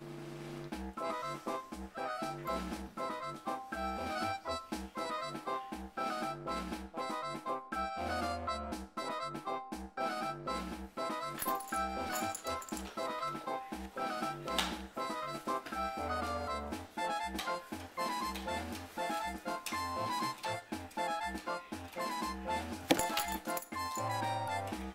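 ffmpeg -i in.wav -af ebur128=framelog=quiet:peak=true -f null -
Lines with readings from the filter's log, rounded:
Integrated loudness:
  I:         -38.6 LUFS
  Threshold: -48.6 LUFS
Loudness range:
  LRA:         2.7 LU
  Threshold: -58.6 LUFS
  LRA low:   -39.7 LUFS
  LRA high:  -37.0 LUFS
True peak:
  Peak:      -11.2 dBFS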